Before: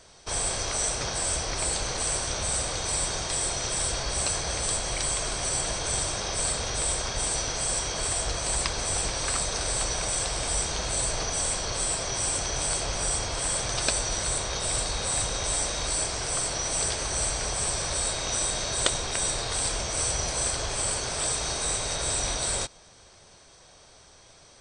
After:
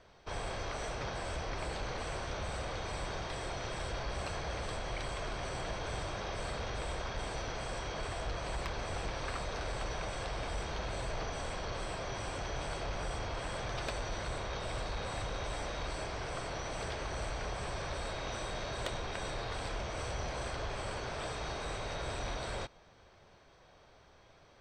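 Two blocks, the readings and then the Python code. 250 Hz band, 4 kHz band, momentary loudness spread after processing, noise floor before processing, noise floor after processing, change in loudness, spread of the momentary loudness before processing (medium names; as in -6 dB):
-5.5 dB, -13.5 dB, 1 LU, -54 dBFS, -61 dBFS, -12.5 dB, 1 LU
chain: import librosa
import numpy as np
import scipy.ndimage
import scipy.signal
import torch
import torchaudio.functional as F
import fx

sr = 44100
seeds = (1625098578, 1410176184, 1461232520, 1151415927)

y = scipy.signal.sosfilt(scipy.signal.butter(2, 2600.0, 'lowpass', fs=sr, output='sos'), x)
y = 10.0 ** (-24.0 / 20.0) * np.tanh(y / 10.0 ** (-24.0 / 20.0))
y = y * 10.0 ** (-4.5 / 20.0)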